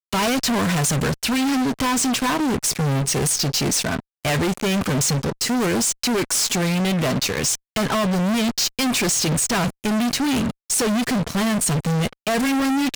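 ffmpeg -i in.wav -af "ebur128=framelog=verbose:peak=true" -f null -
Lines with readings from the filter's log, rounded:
Integrated loudness:
  I:         -20.5 LUFS
  Threshold: -30.5 LUFS
Loudness range:
  LRA:         0.6 LU
  Threshold: -40.5 LUFS
  LRA low:   -20.9 LUFS
  LRA high:  -20.2 LUFS
True peak:
  Peak:      -15.3 dBFS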